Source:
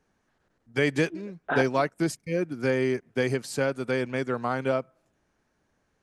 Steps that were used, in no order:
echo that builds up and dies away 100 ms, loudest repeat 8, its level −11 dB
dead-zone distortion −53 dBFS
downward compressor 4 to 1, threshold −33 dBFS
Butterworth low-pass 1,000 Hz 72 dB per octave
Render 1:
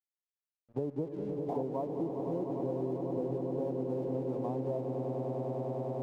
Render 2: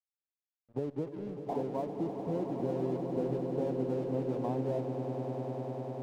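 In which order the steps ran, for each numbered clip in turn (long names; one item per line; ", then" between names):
Butterworth low-pass, then dead-zone distortion, then echo that builds up and dies away, then downward compressor
Butterworth low-pass, then downward compressor, then dead-zone distortion, then echo that builds up and dies away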